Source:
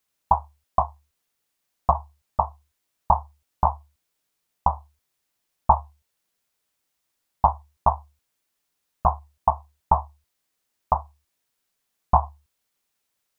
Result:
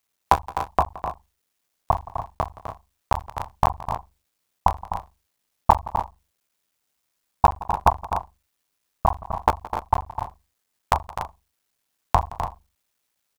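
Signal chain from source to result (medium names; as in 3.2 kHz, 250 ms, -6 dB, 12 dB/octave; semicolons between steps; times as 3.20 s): cycle switcher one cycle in 3, muted; multi-tap echo 170/254/290 ms -19.5/-10.5/-11.5 dB; trim +2.5 dB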